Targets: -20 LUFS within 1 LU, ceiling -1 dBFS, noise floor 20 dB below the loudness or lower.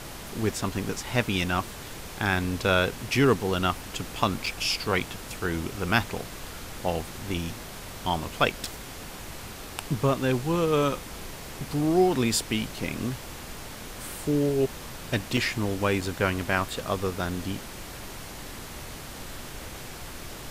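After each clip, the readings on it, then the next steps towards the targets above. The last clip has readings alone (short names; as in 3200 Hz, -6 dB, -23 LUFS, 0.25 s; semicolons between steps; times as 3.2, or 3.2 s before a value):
dropouts 5; longest dropout 3.7 ms; noise floor -41 dBFS; noise floor target -48 dBFS; loudness -27.5 LUFS; peak -5.5 dBFS; loudness target -20.0 LUFS
-> interpolate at 4.46/5/8.65/15.37/16.01, 3.7 ms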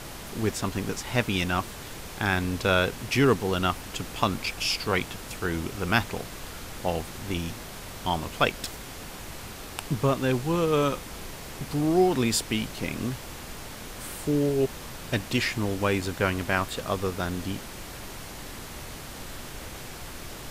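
dropouts 0; noise floor -41 dBFS; noise floor target -48 dBFS
-> noise print and reduce 7 dB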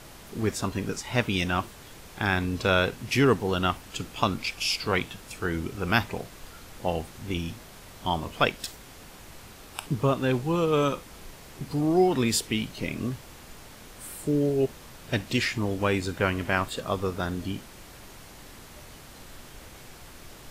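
noise floor -47 dBFS; noise floor target -48 dBFS
-> noise print and reduce 6 dB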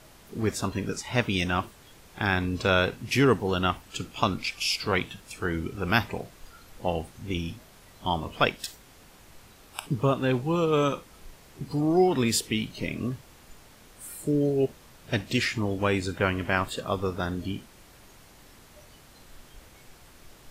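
noise floor -53 dBFS; loudness -27.5 LUFS; peak -5.5 dBFS; loudness target -20.0 LUFS
-> gain +7.5 dB; limiter -1 dBFS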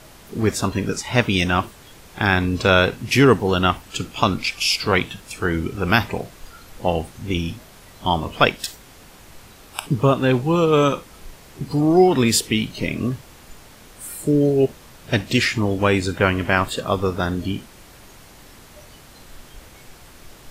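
loudness -20.0 LUFS; peak -1.0 dBFS; noise floor -46 dBFS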